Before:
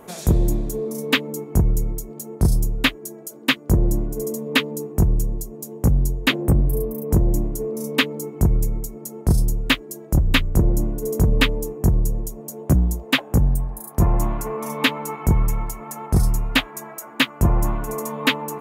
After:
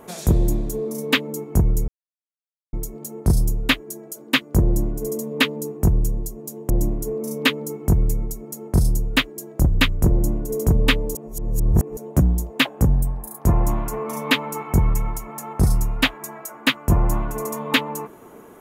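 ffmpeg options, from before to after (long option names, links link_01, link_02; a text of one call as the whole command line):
ffmpeg -i in.wav -filter_complex "[0:a]asplit=5[link_01][link_02][link_03][link_04][link_05];[link_01]atrim=end=1.88,asetpts=PTS-STARTPTS,afade=type=out:start_time=1.876:duration=0.004:curve=hsin,apad=pad_dur=0.85[link_06];[link_02]atrim=start=1.88:end=5.852,asetpts=PTS-STARTPTS,afade=type=in:duration=0.004:curve=hsin[link_07];[link_03]atrim=start=7.228:end=11.682[link_08];[link_04]atrim=start=11.678:end=12.502,asetpts=PTS-STARTPTS,areverse[link_09];[link_05]atrim=start=12.498[link_10];[link_06][link_07]concat=n=2:v=0:a=1[link_11];[link_11][link_08]acrossfade=duration=0.004:curve1=hsin:curve2=hsin[link_12];[link_12][link_09]acrossfade=duration=0.004:curve1=hsin:curve2=hsin[link_13];[link_13][link_10]acrossfade=duration=0.004:curve1=hsin:curve2=hsin" out.wav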